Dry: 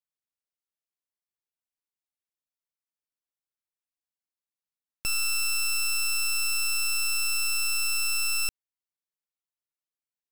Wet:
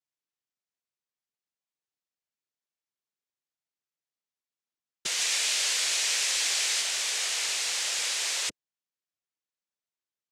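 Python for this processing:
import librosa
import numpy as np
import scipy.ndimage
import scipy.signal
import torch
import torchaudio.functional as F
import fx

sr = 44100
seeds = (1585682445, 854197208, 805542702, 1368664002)

y = fx.bass_treble(x, sr, bass_db=-3, treble_db=5, at=(5.18, 6.81))
y = fx.noise_vocoder(y, sr, seeds[0], bands=3)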